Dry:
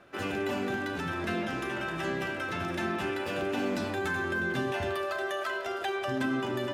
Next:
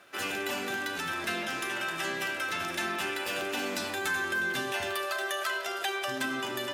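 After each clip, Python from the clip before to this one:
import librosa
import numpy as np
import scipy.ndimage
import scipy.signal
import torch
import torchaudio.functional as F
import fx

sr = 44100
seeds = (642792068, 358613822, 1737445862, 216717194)

y = fx.tilt_eq(x, sr, slope=3.5)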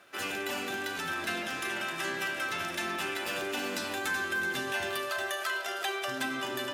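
y = x + 10.0 ** (-10.0 / 20.0) * np.pad(x, (int(377 * sr / 1000.0), 0))[:len(x)]
y = y * 10.0 ** (-1.5 / 20.0)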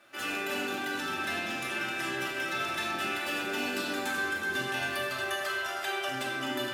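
y = fx.room_shoebox(x, sr, seeds[0], volume_m3=1100.0, walls='mixed', distance_m=2.5)
y = y * 10.0 ** (-4.5 / 20.0)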